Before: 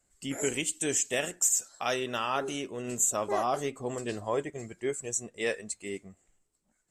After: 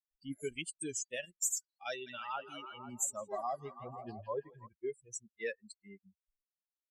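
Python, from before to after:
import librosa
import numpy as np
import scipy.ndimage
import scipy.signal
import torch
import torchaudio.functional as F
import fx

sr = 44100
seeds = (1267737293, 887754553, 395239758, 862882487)

y = fx.bin_expand(x, sr, power=3.0)
y = fx.echo_stepped(y, sr, ms=165, hz=2500.0, octaves=-0.7, feedback_pct=70, wet_db=-4.0, at=(2.06, 4.67), fade=0.02)
y = y * 10.0 ** (-3.5 / 20.0)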